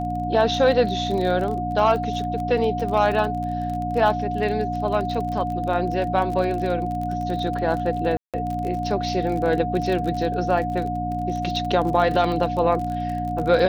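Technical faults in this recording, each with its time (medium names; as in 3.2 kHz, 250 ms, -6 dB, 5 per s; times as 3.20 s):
crackle 31 per s -28 dBFS
hum 60 Hz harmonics 5 -29 dBFS
whine 720 Hz -26 dBFS
8.17–8.34 s: dropout 167 ms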